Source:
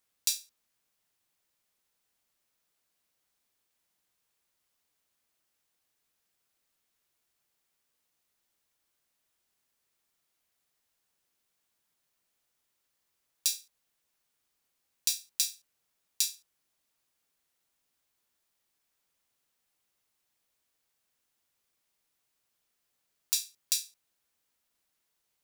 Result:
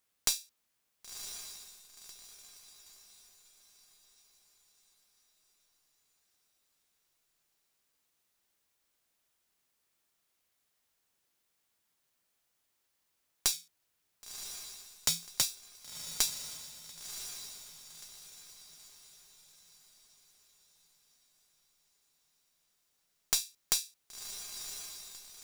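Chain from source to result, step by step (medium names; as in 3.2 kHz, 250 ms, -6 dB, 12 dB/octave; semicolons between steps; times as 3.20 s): tracing distortion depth 0.032 ms; 13.52–15.42 s: frequency shift -170 Hz; echo that smears into a reverb 1047 ms, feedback 44%, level -8.5 dB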